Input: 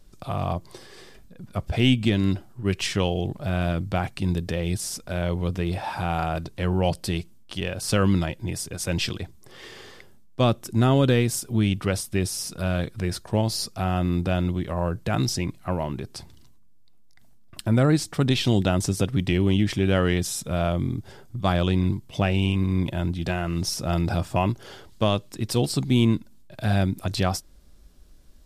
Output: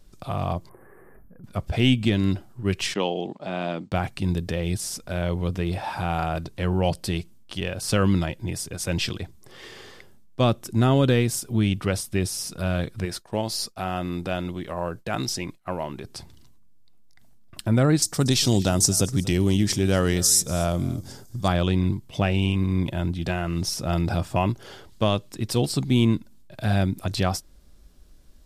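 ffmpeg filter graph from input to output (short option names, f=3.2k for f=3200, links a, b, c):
-filter_complex "[0:a]asettb=1/sr,asplit=3[a][b][c];[a]atrim=end=0.694[d];[b]atrim=start=0.69:end=1.44,asetpts=PTS-STARTPTS,afade=t=in:d=0.004:c=qsin,afade=t=out:st=0.746:d=0.004:c=qsin,acompressor=threshold=-43dB:ratio=5:attack=3.2:release=140:knee=1:detection=peak,asuperstop=centerf=4700:order=8:qfactor=0.51[e];[c]atrim=start=1.436[f];[d][e]acrossfade=d=0.004:c1=hsin:c2=qsin[g];[g][f]acrossfade=d=0.004:c1=qsin:c2=hsin,asettb=1/sr,asplit=3[h][i][j];[h]atrim=end=2.944[k];[i]atrim=start=2.94:end=3.92,asetpts=PTS-STARTPTS,afade=t=in:d=0.004:c=qsin,afade=t=out:st=0.976:d=0.004:c=qsin,highpass=f=200:w=0.5412,highpass=f=200:w=1.3066,equalizer=f=870:t=q:w=4:g=5,equalizer=f=1.5k:t=q:w=4:g=-4,equalizer=f=5.7k:t=q:w=4:g=-5,lowpass=f=7k:w=0.5412,lowpass=f=7k:w=1.3066,agate=range=-33dB:threshold=-40dB:ratio=3:release=100:detection=peak[l];[j]atrim=start=3.916[m];[k][l]acrossfade=d=0.004:c1=hsin:c2=qsin[n];[n][m]acrossfade=d=0.004:c1=qsin:c2=hsin,asettb=1/sr,asplit=3[o][p][q];[o]atrim=end=13.054[r];[p]atrim=start=13.05:end=16.05,asetpts=PTS-STARTPTS,afade=t=in:d=0.004:c=qsin,afade=t=out:st=2.996:d=0.004:c=qsin,agate=range=-33dB:threshold=-37dB:ratio=3:release=100:detection=peak,equalizer=f=66:w=0.37:g=-10.5[s];[q]atrim=start=16.046[t];[r][s]acrossfade=d=0.004:c1=hsin:c2=qsin[u];[u][t]acrossfade=d=0.004:c1=qsin:c2=hsin,asettb=1/sr,asplit=3[v][w][x];[v]atrim=end=18.024[y];[w]atrim=start=18.02:end=21.48,asetpts=PTS-STARTPTS,afade=t=in:d=0.004:c=qsin,afade=t=out:st=3.456:d=0.004:c=qsin,highshelf=f=4.1k:t=q:w=1.5:g=10.5,aecho=1:1:237:0.106,atrim=end_sample=152586[z];[x]atrim=start=21.476[aa];[y][z]acrossfade=d=0.004:c1=hsin:c2=qsin[ab];[ab][aa]acrossfade=d=0.004:c1=qsin:c2=hsin"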